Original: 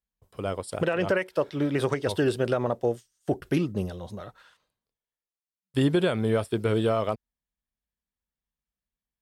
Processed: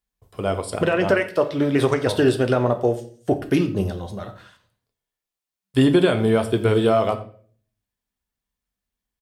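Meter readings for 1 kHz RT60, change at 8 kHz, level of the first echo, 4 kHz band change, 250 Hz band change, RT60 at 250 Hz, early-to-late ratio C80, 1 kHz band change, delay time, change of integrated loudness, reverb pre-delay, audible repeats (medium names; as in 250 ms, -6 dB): 0.40 s, +6.0 dB, -19.5 dB, +6.5 dB, +7.0 dB, 0.60 s, 16.0 dB, +7.0 dB, 88 ms, +6.5 dB, 3 ms, 1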